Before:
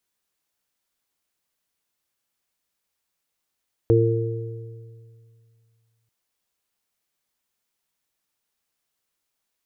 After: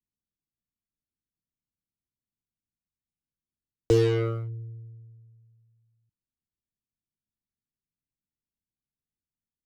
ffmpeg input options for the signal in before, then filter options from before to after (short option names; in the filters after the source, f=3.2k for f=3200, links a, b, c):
-f lavfi -i "aevalsrc='0.15*pow(10,-3*t/2.4)*sin(2*PI*114*t)+0.0178*pow(10,-3*t/0.84)*sin(2*PI*228*t)+0.133*pow(10,-3*t/1.44)*sin(2*PI*342*t)+0.168*pow(10,-3*t/1.69)*sin(2*PI*456*t)':d=2.19:s=44100"
-filter_complex "[0:a]acrossover=split=110|280[a][b][c];[b]asoftclip=type=hard:threshold=-35.5dB[d];[c]acrusher=bits=4:mix=0:aa=0.5[e];[a][d][e]amix=inputs=3:normalize=0"